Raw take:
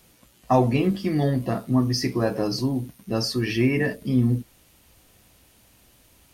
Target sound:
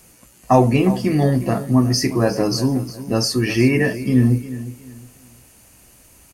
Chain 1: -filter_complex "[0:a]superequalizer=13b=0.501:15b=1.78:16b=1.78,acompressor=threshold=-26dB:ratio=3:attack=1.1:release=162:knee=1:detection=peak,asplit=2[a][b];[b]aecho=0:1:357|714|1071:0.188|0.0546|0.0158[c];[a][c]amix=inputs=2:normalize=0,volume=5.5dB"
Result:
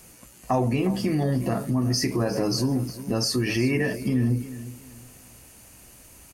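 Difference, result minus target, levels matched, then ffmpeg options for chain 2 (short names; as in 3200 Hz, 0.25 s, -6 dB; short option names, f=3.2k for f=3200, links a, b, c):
compressor: peak gain reduction +11.5 dB
-filter_complex "[0:a]superequalizer=13b=0.501:15b=1.78:16b=1.78,asplit=2[a][b];[b]aecho=0:1:357|714|1071:0.188|0.0546|0.0158[c];[a][c]amix=inputs=2:normalize=0,volume=5.5dB"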